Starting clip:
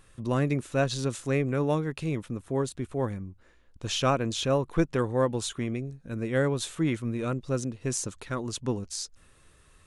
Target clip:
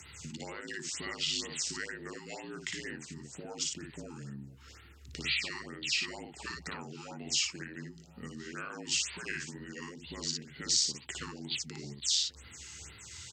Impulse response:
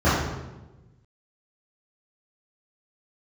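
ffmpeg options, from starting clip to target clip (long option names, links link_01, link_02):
-filter_complex "[0:a]afftfilt=real='re*lt(hypot(re,im),0.251)':imag='im*lt(hypot(re,im),0.251)':win_size=1024:overlap=0.75,acompressor=threshold=-43dB:ratio=8,aexciter=amount=5.2:drive=3.1:freq=2000,afreqshift=85,asplit=2[link_01][link_02];[link_02]adelay=43,volume=-3dB[link_03];[link_01][link_03]amix=inputs=2:normalize=0,asplit=2[link_04][link_05];[link_05]adelay=801,lowpass=frequency=4400:poles=1,volume=-21dB,asplit=2[link_06][link_07];[link_07]adelay=801,lowpass=frequency=4400:poles=1,volume=0.17[link_08];[link_06][link_08]amix=inputs=2:normalize=0[link_09];[link_04][link_09]amix=inputs=2:normalize=0,asetrate=32667,aresample=44100,afftfilt=real='re*(1-between(b*sr/1024,550*pow(6900/550,0.5+0.5*sin(2*PI*2.1*pts/sr))/1.41,550*pow(6900/550,0.5+0.5*sin(2*PI*2.1*pts/sr))*1.41))':imag='im*(1-between(b*sr/1024,550*pow(6900/550,0.5+0.5*sin(2*PI*2.1*pts/sr))/1.41,550*pow(6900/550,0.5+0.5*sin(2*PI*2.1*pts/sr))*1.41))':win_size=1024:overlap=0.75"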